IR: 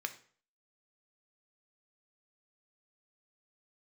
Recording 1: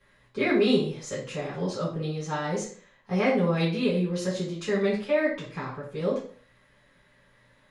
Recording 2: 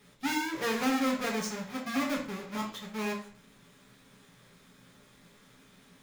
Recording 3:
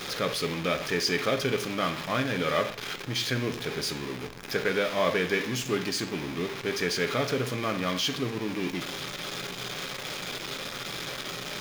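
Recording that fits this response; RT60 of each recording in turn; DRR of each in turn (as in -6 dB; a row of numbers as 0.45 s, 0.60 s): 3; 0.45 s, 0.45 s, 0.45 s; -9.5 dB, -3.0 dB, 7.0 dB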